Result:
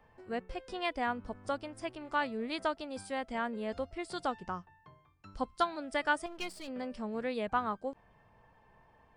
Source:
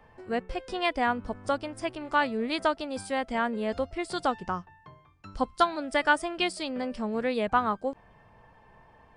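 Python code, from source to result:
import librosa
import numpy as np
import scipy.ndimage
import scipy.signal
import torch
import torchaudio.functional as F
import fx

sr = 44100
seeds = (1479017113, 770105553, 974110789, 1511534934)

y = fx.halfwave_gain(x, sr, db=-12.0, at=(6.26, 6.68))
y = y * 10.0 ** (-7.0 / 20.0)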